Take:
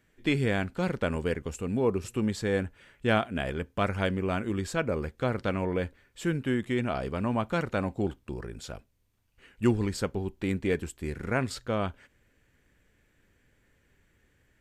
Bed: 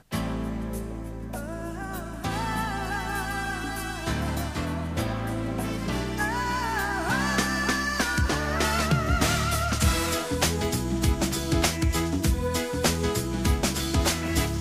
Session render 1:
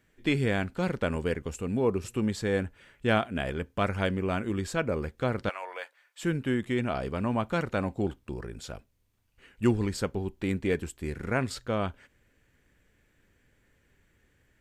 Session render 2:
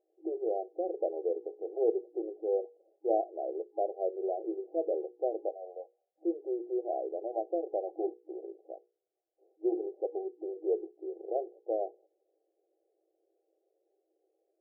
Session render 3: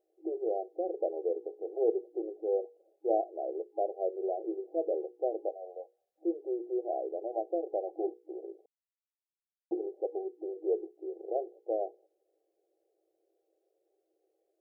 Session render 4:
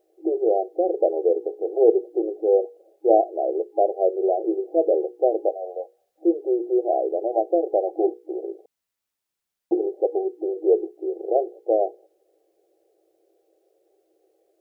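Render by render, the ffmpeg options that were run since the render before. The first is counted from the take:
-filter_complex "[0:a]asettb=1/sr,asplit=3[a][b][c];[a]atrim=end=5.494[d];[b]atrim=start=5.49:end=6.23,asetpts=PTS-STARTPTS,afade=t=in:d=0.004:c=qsin,afade=t=out:st=0.736:d=0.004:c=qsin,highpass=f=690:w=0.5412,highpass=f=690:w=1.3066[e];[c]atrim=start=6.226[f];[d][e]acrossfade=d=0.004:c1=hsin:c2=qsin[g];[g][f]acrossfade=d=0.004:c1=qsin:c2=hsin"
-af "bandreject=f=60:t=h:w=6,bandreject=f=120:t=h:w=6,bandreject=f=180:t=h:w=6,bandreject=f=240:t=h:w=6,bandreject=f=300:t=h:w=6,bandreject=f=360:t=h:w=6,bandreject=f=420:t=h:w=6,bandreject=f=480:t=h:w=6,afftfilt=real='re*between(b*sr/4096,320,810)':imag='im*between(b*sr/4096,320,810)':win_size=4096:overlap=0.75"
-filter_complex "[0:a]asplit=3[a][b][c];[a]atrim=end=8.66,asetpts=PTS-STARTPTS,afade=t=out:st=8.656:d=0.004:c=hsin[d];[b]atrim=start=8.66:end=9.71,asetpts=PTS-STARTPTS,volume=0[e];[c]atrim=start=9.71,asetpts=PTS-STARTPTS,afade=t=in:d=0.004:c=hsin[f];[d][e][f]concat=n=3:v=0:a=1"
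-af "volume=12dB"

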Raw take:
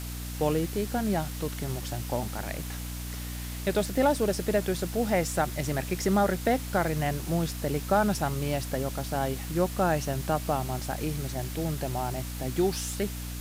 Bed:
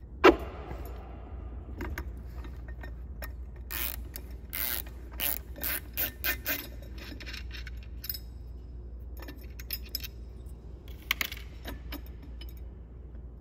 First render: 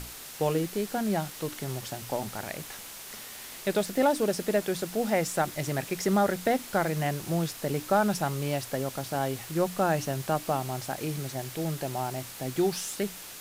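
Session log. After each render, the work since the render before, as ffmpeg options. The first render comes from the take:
-af "bandreject=f=60:t=h:w=6,bandreject=f=120:t=h:w=6,bandreject=f=180:t=h:w=6,bandreject=f=240:t=h:w=6,bandreject=f=300:t=h:w=6"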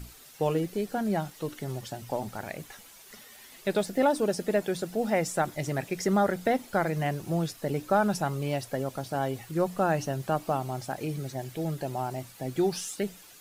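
-af "afftdn=nr=11:nf=-43"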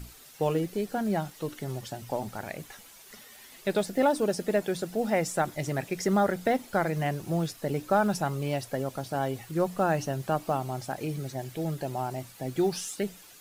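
-af "acrusher=bits=9:mode=log:mix=0:aa=0.000001"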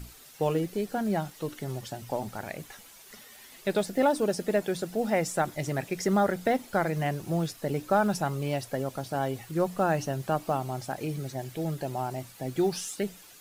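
-af anull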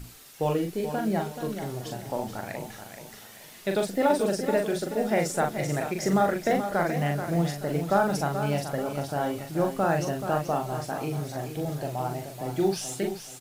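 -filter_complex "[0:a]asplit=2[a][b];[b]adelay=41,volume=-4.5dB[c];[a][c]amix=inputs=2:normalize=0,aecho=1:1:430|860|1290|1720:0.355|0.121|0.041|0.0139"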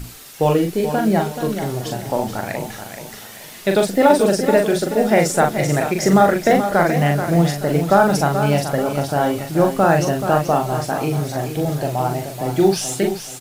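-af "volume=10dB,alimiter=limit=-1dB:level=0:latency=1"

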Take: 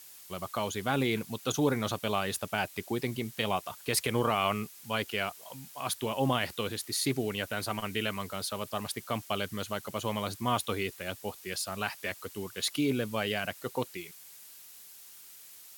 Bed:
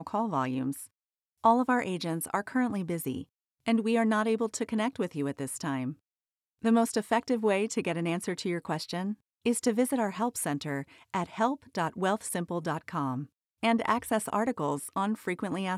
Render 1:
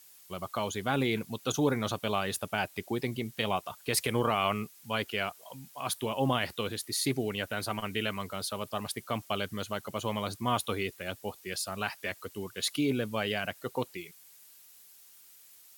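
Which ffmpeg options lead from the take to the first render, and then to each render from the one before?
-af "afftdn=nr=6:nf=-51"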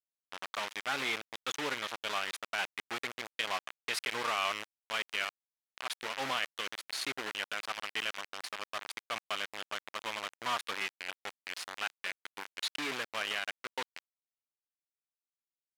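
-af "acrusher=bits=4:mix=0:aa=0.000001,bandpass=f=2.1k:t=q:w=0.78:csg=0"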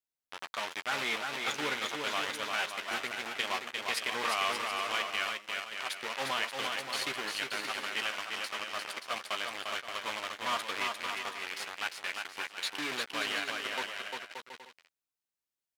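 -filter_complex "[0:a]asplit=2[a][b];[b]adelay=13,volume=-9.5dB[c];[a][c]amix=inputs=2:normalize=0,asplit=2[d][e];[e]aecho=0:1:350|577.5|725.4|821.5|884:0.631|0.398|0.251|0.158|0.1[f];[d][f]amix=inputs=2:normalize=0"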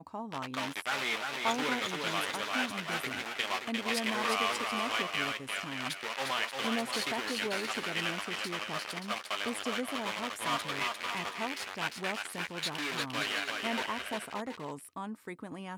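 -filter_complex "[1:a]volume=-10.5dB[a];[0:a][a]amix=inputs=2:normalize=0"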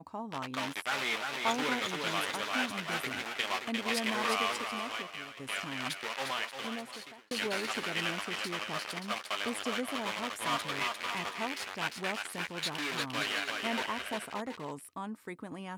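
-filter_complex "[0:a]asplit=3[a][b][c];[a]atrim=end=5.37,asetpts=PTS-STARTPTS,afade=t=out:st=4.33:d=1.04:silence=0.177828[d];[b]atrim=start=5.37:end=7.31,asetpts=PTS-STARTPTS,afade=t=in:d=0.004:c=hsin:silence=0.177828,afade=t=out:st=0.69:d=1.25[e];[c]atrim=start=7.31,asetpts=PTS-STARTPTS,afade=t=in:d=0.004:c=hsin[f];[d][e][f]concat=n=3:v=0:a=1"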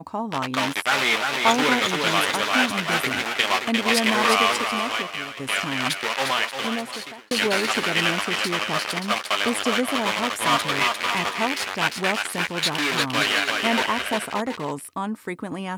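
-af "volume=12dB"

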